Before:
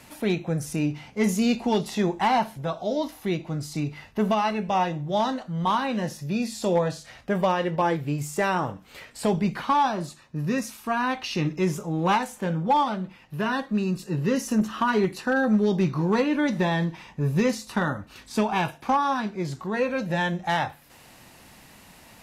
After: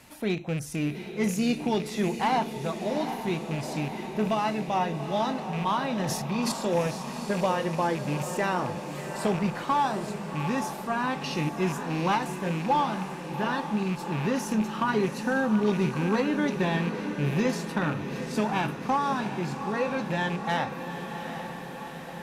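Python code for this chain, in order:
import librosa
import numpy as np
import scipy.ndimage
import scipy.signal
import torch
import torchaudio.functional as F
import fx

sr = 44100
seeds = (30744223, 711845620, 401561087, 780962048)

y = fx.rattle_buzz(x, sr, strikes_db=-27.0, level_db=-26.0)
y = fx.transient(y, sr, attack_db=-1, sustain_db=12, at=(5.85, 6.52))
y = fx.echo_diffused(y, sr, ms=781, feedback_pct=67, wet_db=-8.5)
y = y * 10.0 ** (-3.5 / 20.0)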